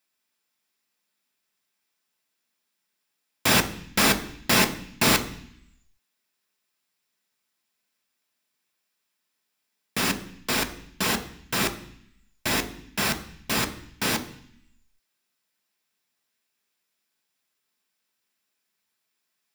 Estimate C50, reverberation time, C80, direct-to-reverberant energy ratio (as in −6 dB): 14.0 dB, 0.65 s, 16.5 dB, 6.5 dB